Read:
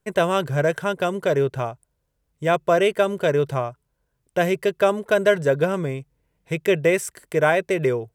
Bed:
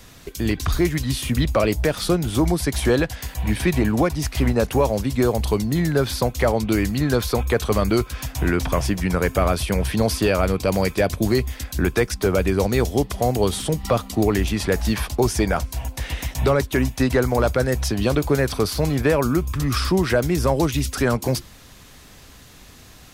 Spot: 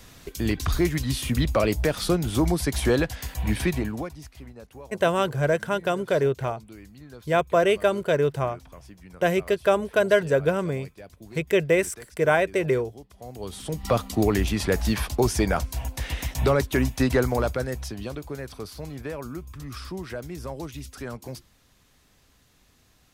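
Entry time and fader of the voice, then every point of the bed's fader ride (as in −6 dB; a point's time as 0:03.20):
4.85 s, −2.0 dB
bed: 0:03.62 −3 dB
0:04.48 −25 dB
0:13.10 −25 dB
0:13.92 −2.5 dB
0:17.20 −2.5 dB
0:18.21 −15.5 dB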